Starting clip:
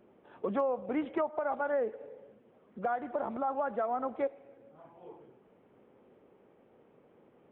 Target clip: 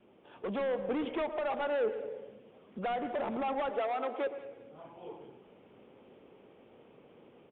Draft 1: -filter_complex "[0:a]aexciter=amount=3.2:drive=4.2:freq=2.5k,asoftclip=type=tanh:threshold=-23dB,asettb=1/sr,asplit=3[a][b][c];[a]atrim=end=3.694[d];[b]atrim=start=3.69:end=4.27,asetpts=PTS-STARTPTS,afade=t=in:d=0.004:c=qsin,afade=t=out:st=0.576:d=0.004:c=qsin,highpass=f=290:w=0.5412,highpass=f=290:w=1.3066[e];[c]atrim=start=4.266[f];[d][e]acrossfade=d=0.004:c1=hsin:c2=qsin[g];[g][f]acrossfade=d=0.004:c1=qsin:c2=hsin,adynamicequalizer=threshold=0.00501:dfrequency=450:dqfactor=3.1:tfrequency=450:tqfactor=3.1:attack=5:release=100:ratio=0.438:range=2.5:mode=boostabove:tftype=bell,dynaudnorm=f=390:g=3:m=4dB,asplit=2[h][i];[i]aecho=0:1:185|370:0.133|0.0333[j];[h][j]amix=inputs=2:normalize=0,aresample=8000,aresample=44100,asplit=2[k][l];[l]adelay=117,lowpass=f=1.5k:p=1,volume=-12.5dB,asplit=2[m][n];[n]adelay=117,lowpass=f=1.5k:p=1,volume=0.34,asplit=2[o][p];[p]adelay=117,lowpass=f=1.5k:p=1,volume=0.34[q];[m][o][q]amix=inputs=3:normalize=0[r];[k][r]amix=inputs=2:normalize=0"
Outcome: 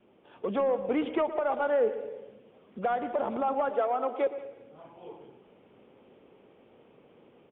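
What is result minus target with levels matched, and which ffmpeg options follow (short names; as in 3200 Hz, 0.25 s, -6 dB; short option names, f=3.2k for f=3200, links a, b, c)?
soft clip: distortion -14 dB
-filter_complex "[0:a]aexciter=amount=3.2:drive=4.2:freq=2.5k,asoftclip=type=tanh:threshold=-34.5dB,asettb=1/sr,asplit=3[a][b][c];[a]atrim=end=3.694[d];[b]atrim=start=3.69:end=4.27,asetpts=PTS-STARTPTS,afade=t=in:d=0.004:c=qsin,afade=t=out:st=0.576:d=0.004:c=qsin,highpass=f=290:w=0.5412,highpass=f=290:w=1.3066[e];[c]atrim=start=4.266[f];[d][e]acrossfade=d=0.004:c1=hsin:c2=qsin[g];[g][f]acrossfade=d=0.004:c1=qsin:c2=hsin,adynamicequalizer=threshold=0.00501:dfrequency=450:dqfactor=3.1:tfrequency=450:tqfactor=3.1:attack=5:release=100:ratio=0.438:range=2.5:mode=boostabove:tftype=bell,dynaudnorm=f=390:g=3:m=4dB,asplit=2[h][i];[i]aecho=0:1:185|370:0.133|0.0333[j];[h][j]amix=inputs=2:normalize=0,aresample=8000,aresample=44100,asplit=2[k][l];[l]adelay=117,lowpass=f=1.5k:p=1,volume=-12.5dB,asplit=2[m][n];[n]adelay=117,lowpass=f=1.5k:p=1,volume=0.34,asplit=2[o][p];[p]adelay=117,lowpass=f=1.5k:p=1,volume=0.34[q];[m][o][q]amix=inputs=3:normalize=0[r];[k][r]amix=inputs=2:normalize=0"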